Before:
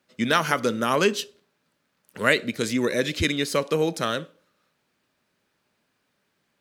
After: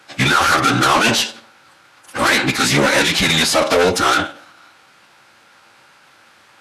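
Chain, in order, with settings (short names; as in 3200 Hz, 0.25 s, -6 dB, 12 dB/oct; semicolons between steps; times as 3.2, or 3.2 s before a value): small resonant body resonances 1000/1400 Hz, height 8 dB, ringing for 30 ms; overdrive pedal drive 36 dB, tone 6900 Hz, clips at -2 dBFS; formant-preserving pitch shift -10 st; gain -3.5 dB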